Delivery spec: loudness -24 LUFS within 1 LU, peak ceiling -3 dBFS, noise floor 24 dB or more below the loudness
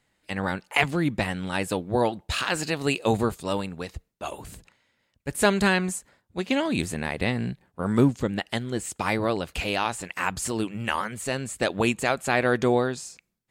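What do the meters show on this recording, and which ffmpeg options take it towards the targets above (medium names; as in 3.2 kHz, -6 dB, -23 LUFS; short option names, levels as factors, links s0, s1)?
loudness -26.0 LUFS; peak level -5.5 dBFS; loudness target -24.0 LUFS
-> -af "volume=1.26"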